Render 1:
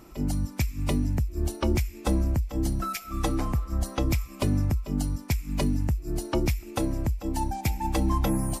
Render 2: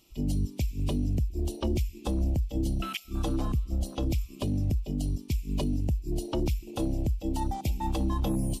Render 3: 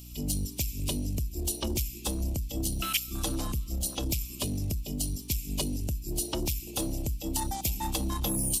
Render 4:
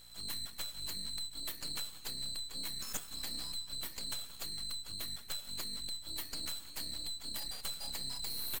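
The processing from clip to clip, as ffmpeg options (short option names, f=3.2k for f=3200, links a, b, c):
-af "afwtdn=0.0251,highshelf=f=2.2k:t=q:w=3:g=11,alimiter=limit=-20.5dB:level=0:latency=1:release=23"
-af "asoftclip=type=tanh:threshold=-22dB,crystalizer=i=6.5:c=0,aeval=exprs='val(0)+0.00708*(sin(2*PI*60*n/s)+sin(2*PI*2*60*n/s)/2+sin(2*PI*3*60*n/s)/3+sin(2*PI*4*60*n/s)/4+sin(2*PI*5*60*n/s)/5)':c=same,volume=-2.5dB"
-filter_complex "[0:a]afftfilt=real='real(if(lt(b,736),b+184*(1-2*mod(floor(b/184),2)),b),0)':imag='imag(if(lt(b,736),b+184*(1-2*mod(floor(b/184),2)),b),0)':win_size=2048:overlap=0.75,aeval=exprs='max(val(0),0)':c=same,asplit=2[a][b];[b]adelay=174.9,volume=-16dB,highshelf=f=4k:g=-3.94[c];[a][c]amix=inputs=2:normalize=0,volume=-7dB"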